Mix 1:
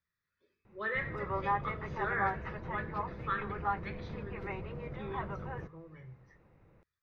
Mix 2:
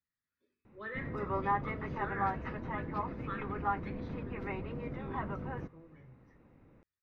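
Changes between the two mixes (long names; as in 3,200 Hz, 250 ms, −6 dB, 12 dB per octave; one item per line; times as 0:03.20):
speech −7.5 dB
master: add parametric band 260 Hz +13 dB 0.41 octaves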